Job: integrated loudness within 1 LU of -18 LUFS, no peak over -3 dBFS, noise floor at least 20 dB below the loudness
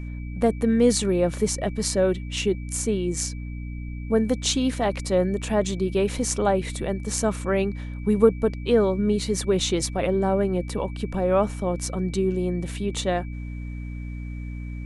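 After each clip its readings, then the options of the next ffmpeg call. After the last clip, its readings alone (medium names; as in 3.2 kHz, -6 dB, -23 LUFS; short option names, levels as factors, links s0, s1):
hum 60 Hz; highest harmonic 300 Hz; hum level -30 dBFS; steady tone 2.3 kHz; tone level -48 dBFS; loudness -24.0 LUFS; peak level -4.5 dBFS; loudness target -18.0 LUFS
-> -af "bandreject=f=60:t=h:w=4,bandreject=f=120:t=h:w=4,bandreject=f=180:t=h:w=4,bandreject=f=240:t=h:w=4,bandreject=f=300:t=h:w=4"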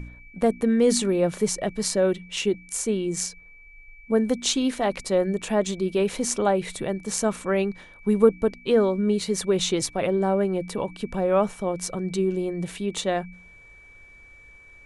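hum not found; steady tone 2.3 kHz; tone level -48 dBFS
-> -af "bandreject=f=2300:w=30"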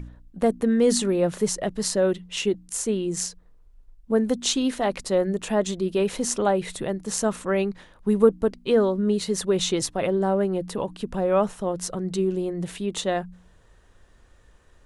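steady tone not found; loudness -24.5 LUFS; peak level -4.5 dBFS; loudness target -18.0 LUFS
-> -af "volume=2.11,alimiter=limit=0.708:level=0:latency=1"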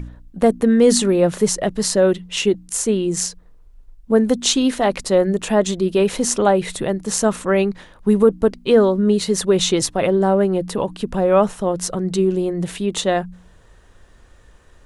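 loudness -18.0 LUFS; peak level -3.0 dBFS; noise floor -49 dBFS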